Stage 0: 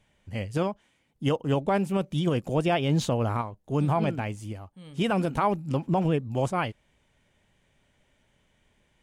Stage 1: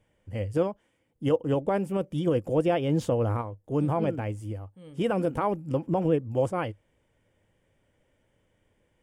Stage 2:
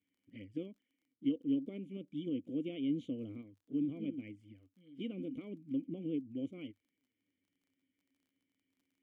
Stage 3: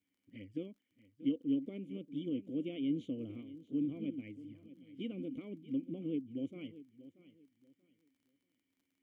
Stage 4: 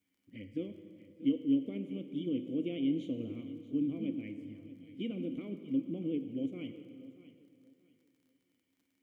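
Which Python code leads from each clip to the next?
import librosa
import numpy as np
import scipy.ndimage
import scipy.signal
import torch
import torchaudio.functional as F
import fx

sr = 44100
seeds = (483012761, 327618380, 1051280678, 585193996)

y1 = fx.graphic_eq_31(x, sr, hz=(100, 315, 500, 2500, 4000, 6300), db=(8, 7, 10, -3, -11, -5))
y1 = y1 * 10.0 ** (-4.0 / 20.0)
y2 = fx.env_flanger(y1, sr, rest_ms=11.4, full_db=-25.5)
y2 = fx.vowel_filter(y2, sr, vowel='i')
y2 = fx.dmg_crackle(y2, sr, seeds[0], per_s=30.0, level_db=-65.0)
y3 = fx.echo_feedback(y2, sr, ms=634, feedback_pct=26, wet_db=-16.5)
y4 = fx.rev_plate(y3, sr, seeds[1], rt60_s=2.4, hf_ratio=0.8, predelay_ms=0, drr_db=8.0)
y4 = y4 * 10.0 ** (3.0 / 20.0)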